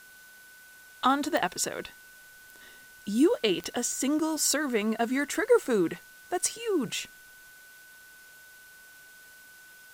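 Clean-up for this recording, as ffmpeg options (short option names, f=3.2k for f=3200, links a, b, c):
-af "adeclick=t=4,bandreject=f=1.5k:w=30,afftdn=nr=22:nf=-52"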